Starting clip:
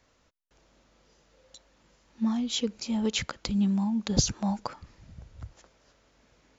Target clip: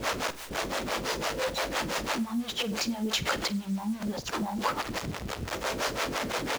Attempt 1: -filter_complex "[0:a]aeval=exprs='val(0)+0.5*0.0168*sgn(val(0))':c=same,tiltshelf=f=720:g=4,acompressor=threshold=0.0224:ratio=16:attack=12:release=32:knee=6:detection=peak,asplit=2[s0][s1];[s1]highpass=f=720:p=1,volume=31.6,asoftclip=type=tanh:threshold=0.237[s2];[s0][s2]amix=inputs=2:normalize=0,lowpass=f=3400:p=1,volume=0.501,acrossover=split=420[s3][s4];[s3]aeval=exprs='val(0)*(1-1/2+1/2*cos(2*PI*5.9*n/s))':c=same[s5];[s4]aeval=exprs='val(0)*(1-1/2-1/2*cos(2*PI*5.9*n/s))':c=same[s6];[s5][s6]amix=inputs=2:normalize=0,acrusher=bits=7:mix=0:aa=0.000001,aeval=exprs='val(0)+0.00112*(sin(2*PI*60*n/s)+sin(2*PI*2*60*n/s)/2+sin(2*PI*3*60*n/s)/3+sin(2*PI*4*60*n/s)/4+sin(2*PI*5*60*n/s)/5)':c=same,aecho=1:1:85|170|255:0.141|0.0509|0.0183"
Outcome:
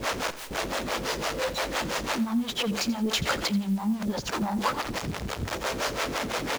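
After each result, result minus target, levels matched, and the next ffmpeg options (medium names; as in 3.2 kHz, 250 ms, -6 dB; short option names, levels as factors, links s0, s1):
echo 38 ms late; compression: peak gain reduction -6.5 dB
-filter_complex "[0:a]aeval=exprs='val(0)+0.5*0.0168*sgn(val(0))':c=same,tiltshelf=f=720:g=4,acompressor=threshold=0.0224:ratio=16:attack=12:release=32:knee=6:detection=peak,asplit=2[s0][s1];[s1]highpass=f=720:p=1,volume=31.6,asoftclip=type=tanh:threshold=0.237[s2];[s0][s2]amix=inputs=2:normalize=0,lowpass=f=3400:p=1,volume=0.501,acrossover=split=420[s3][s4];[s3]aeval=exprs='val(0)*(1-1/2+1/2*cos(2*PI*5.9*n/s))':c=same[s5];[s4]aeval=exprs='val(0)*(1-1/2-1/2*cos(2*PI*5.9*n/s))':c=same[s6];[s5][s6]amix=inputs=2:normalize=0,acrusher=bits=7:mix=0:aa=0.000001,aeval=exprs='val(0)+0.00112*(sin(2*PI*60*n/s)+sin(2*PI*2*60*n/s)/2+sin(2*PI*3*60*n/s)/3+sin(2*PI*4*60*n/s)/4+sin(2*PI*5*60*n/s)/5)':c=same,aecho=1:1:47|94|141:0.141|0.0509|0.0183"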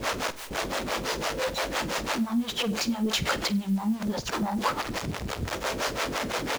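compression: peak gain reduction -6.5 dB
-filter_complex "[0:a]aeval=exprs='val(0)+0.5*0.0168*sgn(val(0))':c=same,tiltshelf=f=720:g=4,acompressor=threshold=0.01:ratio=16:attack=12:release=32:knee=6:detection=peak,asplit=2[s0][s1];[s1]highpass=f=720:p=1,volume=31.6,asoftclip=type=tanh:threshold=0.237[s2];[s0][s2]amix=inputs=2:normalize=0,lowpass=f=3400:p=1,volume=0.501,acrossover=split=420[s3][s4];[s3]aeval=exprs='val(0)*(1-1/2+1/2*cos(2*PI*5.9*n/s))':c=same[s5];[s4]aeval=exprs='val(0)*(1-1/2-1/2*cos(2*PI*5.9*n/s))':c=same[s6];[s5][s6]amix=inputs=2:normalize=0,acrusher=bits=7:mix=0:aa=0.000001,aeval=exprs='val(0)+0.00112*(sin(2*PI*60*n/s)+sin(2*PI*2*60*n/s)/2+sin(2*PI*3*60*n/s)/3+sin(2*PI*4*60*n/s)/4+sin(2*PI*5*60*n/s)/5)':c=same,aecho=1:1:47|94|141:0.141|0.0509|0.0183"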